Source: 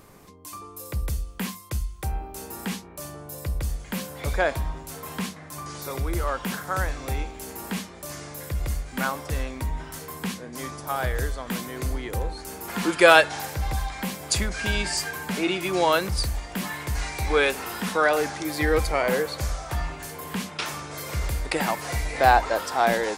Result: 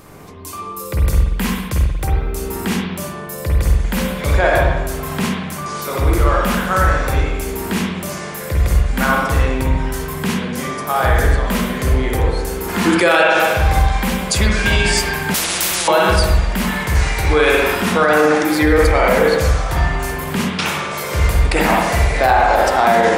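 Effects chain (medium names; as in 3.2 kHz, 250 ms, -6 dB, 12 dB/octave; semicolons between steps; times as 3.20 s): spring tank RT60 1.1 s, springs 46/59 ms, chirp 80 ms, DRR -2.5 dB; loudness maximiser +11 dB; 15.34–15.88 s: spectrum-flattening compressor 10:1; trim -3 dB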